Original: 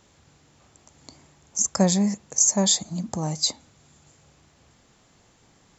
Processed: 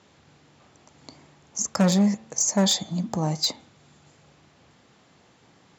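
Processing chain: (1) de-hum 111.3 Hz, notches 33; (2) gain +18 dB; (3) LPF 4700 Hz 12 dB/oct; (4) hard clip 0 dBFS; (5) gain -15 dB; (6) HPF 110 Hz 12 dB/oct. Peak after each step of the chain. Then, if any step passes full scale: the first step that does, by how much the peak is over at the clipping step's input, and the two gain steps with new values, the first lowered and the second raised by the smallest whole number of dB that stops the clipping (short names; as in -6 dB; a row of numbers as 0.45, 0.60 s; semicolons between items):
-5.5, +12.5, +8.5, 0.0, -15.0, -9.0 dBFS; step 2, 8.5 dB; step 2 +9 dB, step 5 -6 dB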